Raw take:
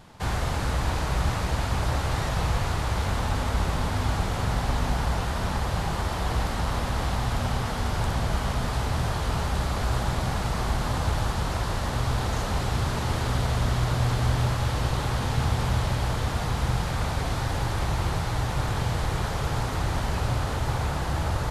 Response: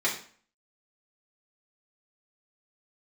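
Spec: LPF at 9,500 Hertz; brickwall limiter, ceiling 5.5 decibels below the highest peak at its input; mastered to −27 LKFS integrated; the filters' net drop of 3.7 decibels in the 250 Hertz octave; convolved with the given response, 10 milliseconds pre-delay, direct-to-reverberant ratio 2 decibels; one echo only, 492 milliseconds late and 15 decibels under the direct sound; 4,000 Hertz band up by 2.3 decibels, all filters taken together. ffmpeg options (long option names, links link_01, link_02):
-filter_complex "[0:a]lowpass=9500,equalizer=frequency=250:width_type=o:gain=-6,equalizer=frequency=4000:width_type=o:gain=3,alimiter=limit=-18dB:level=0:latency=1,aecho=1:1:492:0.178,asplit=2[link_01][link_02];[1:a]atrim=start_sample=2205,adelay=10[link_03];[link_02][link_03]afir=irnorm=-1:irlink=0,volume=-12.5dB[link_04];[link_01][link_04]amix=inputs=2:normalize=0,volume=1dB"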